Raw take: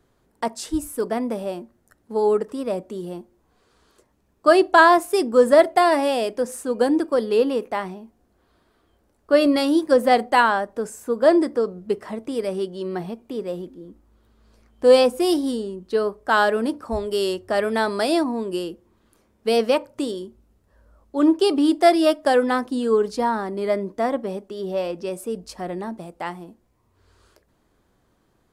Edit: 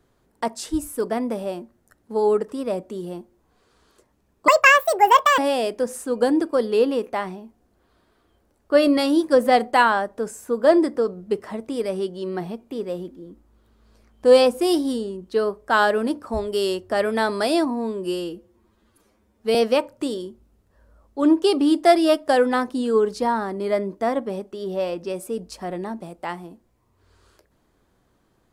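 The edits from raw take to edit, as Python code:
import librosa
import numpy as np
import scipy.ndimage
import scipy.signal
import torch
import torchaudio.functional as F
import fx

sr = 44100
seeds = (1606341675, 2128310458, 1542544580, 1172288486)

y = fx.edit(x, sr, fx.speed_span(start_s=4.48, length_s=1.49, speed=1.65),
    fx.stretch_span(start_s=18.29, length_s=1.23, factor=1.5), tone=tone)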